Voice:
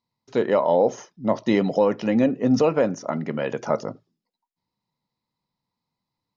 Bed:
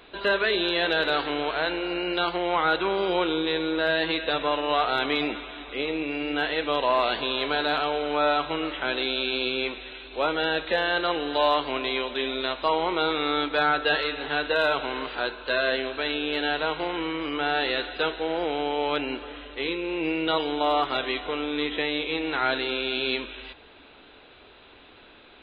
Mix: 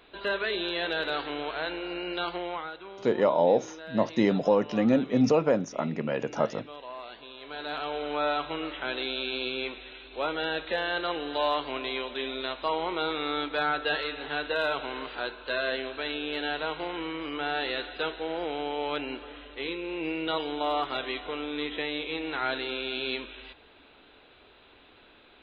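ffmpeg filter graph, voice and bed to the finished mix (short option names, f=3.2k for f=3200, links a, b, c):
-filter_complex "[0:a]adelay=2700,volume=-3.5dB[a];[1:a]volume=7.5dB,afade=t=out:st=2.37:d=0.35:silence=0.237137,afade=t=in:st=7.41:d=0.62:silence=0.211349[b];[a][b]amix=inputs=2:normalize=0"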